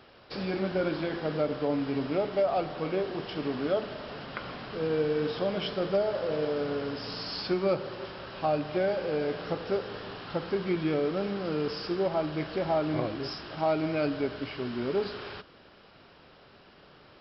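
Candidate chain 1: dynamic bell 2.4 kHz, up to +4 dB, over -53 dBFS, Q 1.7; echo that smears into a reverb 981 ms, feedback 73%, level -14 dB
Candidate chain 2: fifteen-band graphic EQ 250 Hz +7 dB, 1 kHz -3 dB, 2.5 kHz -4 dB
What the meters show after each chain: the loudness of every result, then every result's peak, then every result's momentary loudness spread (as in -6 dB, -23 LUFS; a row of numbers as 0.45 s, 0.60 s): -30.5 LUFS, -29.5 LUFS; -14.0 dBFS, -13.0 dBFS; 11 LU, 11 LU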